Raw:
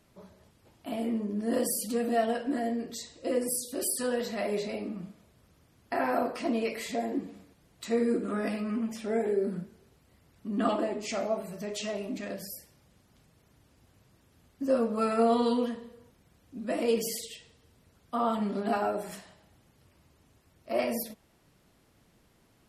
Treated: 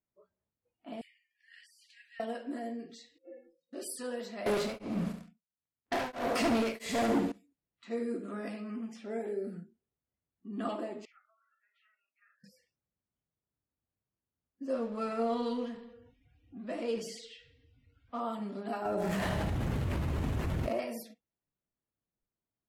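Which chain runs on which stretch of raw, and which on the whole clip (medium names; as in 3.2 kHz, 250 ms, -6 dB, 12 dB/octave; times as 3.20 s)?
1.01–2.20 s: steep high-pass 1.7 kHz 48 dB/octave + compression 3:1, threshold -39 dBFS
3.18–3.73 s: low-pass 2.1 kHz + inharmonic resonator 160 Hz, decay 0.37 s, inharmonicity 0.03
4.46–7.32 s: waveshaping leveller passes 5 + feedback delay 71 ms, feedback 49%, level -9 dB + tremolo of two beating tones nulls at 1.5 Hz
11.05–12.44 s: compression 20:1, threshold -36 dBFS + ladder band-pass 1.5 kHz, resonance 65%
14.73–18.20 s: companding laws mixed up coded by mu + low-pass 6.7 kHz
18.85–20.80 s: median filter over 9 samples + bass shelf 180 Hz +8 dB + level flattener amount 100%
whole clip: spectral noise reduction 22 dB; level-controlled noise filter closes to 2.2 kHz, open at -25 dBFS; trim -8 dB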